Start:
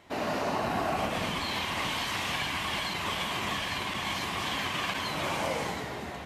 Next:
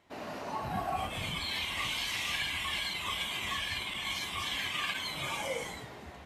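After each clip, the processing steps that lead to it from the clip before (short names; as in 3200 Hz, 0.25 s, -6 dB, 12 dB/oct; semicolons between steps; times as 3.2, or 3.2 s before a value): spectral noise reduction 10 dB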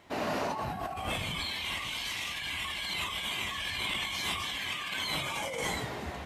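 negative-ratio compressor -40 dBFS, ratio -1; gain +5 dB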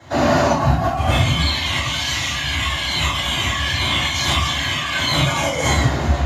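reverb, pre-delay 3 ms, DRR -8 dB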